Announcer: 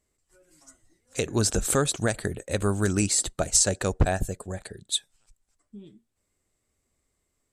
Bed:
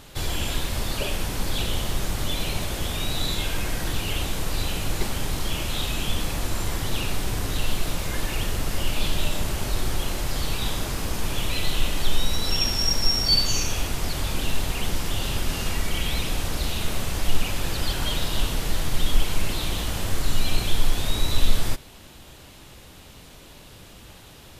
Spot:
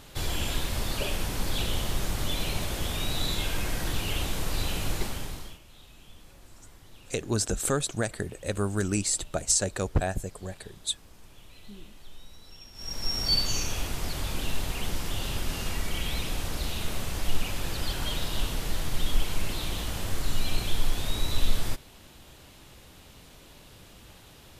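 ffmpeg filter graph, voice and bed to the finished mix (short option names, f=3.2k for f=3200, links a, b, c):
-filter_complex "[0:a]adelay=5950,volume=-3.5dB[a];[1:a]volume=17.5dB,afade=t=out:st=4.89:d=0.7:silence=0.0749894,afade=t=in:st=12.73:d=0.56:silence=0.0944061[b];[a][b]amix=inputs=2:normalize=0"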